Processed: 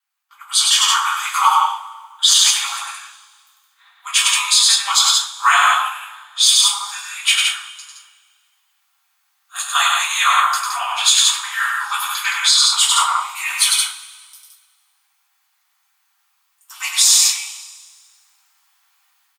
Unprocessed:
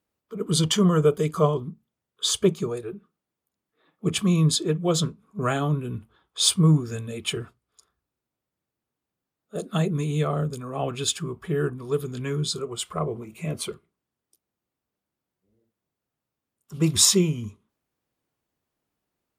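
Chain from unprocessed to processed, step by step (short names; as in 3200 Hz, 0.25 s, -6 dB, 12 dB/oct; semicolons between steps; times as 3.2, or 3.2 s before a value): steep high-pass 890 Hz 96 dB/oct; AGC gain up to 16 dB; ring modulator 110 Hz; loudspeakers at several distances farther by 34 m -4 dB, 58 m -5 dB; two-slope reverb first 0.27 s, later 1.7 s, from -21 dB, DRR -5 dB; maximiser +3 dB; gain -1 dB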